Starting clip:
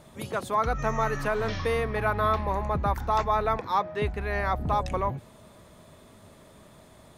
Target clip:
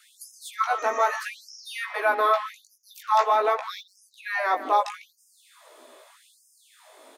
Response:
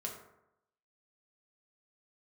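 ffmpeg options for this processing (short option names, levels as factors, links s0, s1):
-filter_complex "[0:a]lowshelf=f=160:g=-11,asplit=2[s0][s1];[s1]adelay=150,highpass=300,lowpass=3400,asoftclip=type=hard:threshold=0.0891,volume=0.224[s2];[s0][s2]amix=inputs=2:normalize=0,flanger=delay=15:depth=4.5:speed=0.52,afftfilt=real='re*gte(b*sr/1024,240*pow(5000/240,0.5+0.5*sin(2*PI*0.81*pts/sr)))':imag='im*gte(b*sr/1024,240*pow(5000/240,0.5+0.5*sin(2*PI*0.81*pts/sr)))':win_size=1024:overlap=0.75,volume=2.37"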